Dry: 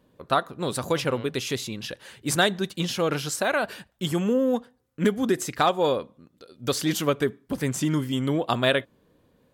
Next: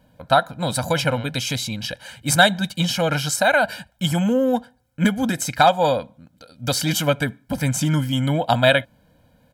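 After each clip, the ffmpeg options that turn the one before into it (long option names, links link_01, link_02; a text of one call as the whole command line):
ffmpeg -i in.wav -af "aecho=1:1:1.3:0.98,volume=3.5dB" out.wav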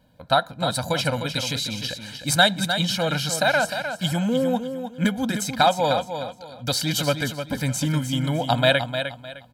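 ffmpeg -i in.wav -af "equalizer=frequency=4100:width_type=o:width=0.42:gain=6,aecho=1:1:305|610|915:0.376|0.101|0.0274,volume=-3.5dB" out.wav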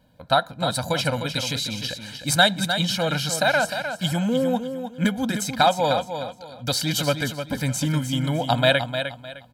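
ffmpeg -i in.wav -af anull out.wav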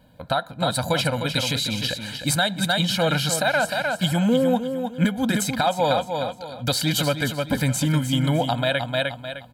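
ffmpeg -i in.wav -af "equalizer=frequency=5700:width_type=o:width=0.4:gain=-6,alimiter=limit=-15.5dB:level=0:latency=1:release=357,volume=5dB" out.wav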